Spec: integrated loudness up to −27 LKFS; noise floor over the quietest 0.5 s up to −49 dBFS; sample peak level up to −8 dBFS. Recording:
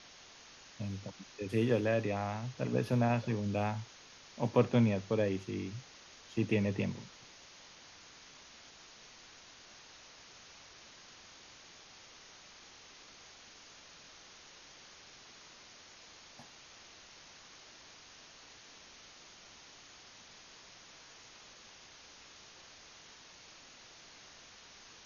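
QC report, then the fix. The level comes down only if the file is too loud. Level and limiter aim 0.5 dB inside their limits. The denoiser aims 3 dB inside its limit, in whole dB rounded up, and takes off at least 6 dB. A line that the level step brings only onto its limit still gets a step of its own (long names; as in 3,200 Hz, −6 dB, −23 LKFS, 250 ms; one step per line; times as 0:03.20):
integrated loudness −34.0 LKFS: in spec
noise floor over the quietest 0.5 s −56 dBFS: in spec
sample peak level −14.0 dBFS: in spec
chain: no processing needed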